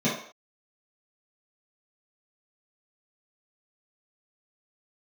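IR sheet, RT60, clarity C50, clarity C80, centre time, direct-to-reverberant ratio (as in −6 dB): non-exponential decay, 4.0 dB, 8.5 dB, 41 ms, −10.5 dB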